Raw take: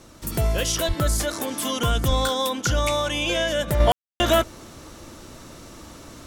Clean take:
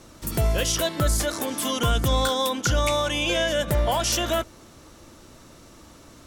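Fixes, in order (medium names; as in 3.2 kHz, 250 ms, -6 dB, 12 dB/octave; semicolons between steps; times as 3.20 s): 0.87–0.99 s: high-pass 140 Hz 24 dB/octave; 2.07–2.19 s: high-pass 140 Hz 24 dB/octave; room tone fill 3.92–4.20 s; trim 0 dB, from 3.80 s -6 dB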